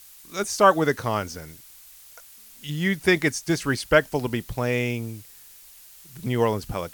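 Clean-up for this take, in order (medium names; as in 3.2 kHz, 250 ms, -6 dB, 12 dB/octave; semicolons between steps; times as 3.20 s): interpolate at 0.44/2.49/4.03/4.54 s, 1.4 ms; noise print and reduce 20 dB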